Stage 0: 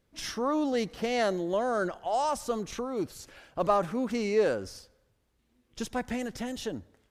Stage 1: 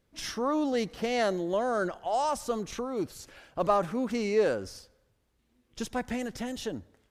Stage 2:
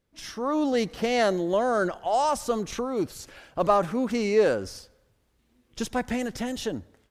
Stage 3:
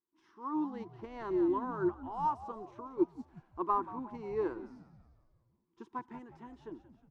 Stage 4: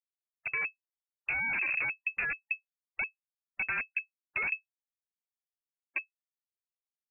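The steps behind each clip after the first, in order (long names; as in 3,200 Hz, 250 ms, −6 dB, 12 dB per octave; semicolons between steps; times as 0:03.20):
no processing that can be heard
automatic gain control gain up to 8.5 dB; level −4 dB
pair of resonant band-passes 590 Hz, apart 1.5 octaves; on a send: echo with shifted repeats 180 ms, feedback 57%, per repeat −92 Hz, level −11 dB; on the sum: expander for the loud parts 1.5 to 1, over −46 dBFS; level +2.5 dB
comparator with hysteresis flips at −32 dBFS; gate on every frequency bin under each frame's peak −30 dB strong; voice inversion scrambler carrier 2,600 Hz; level +6 dB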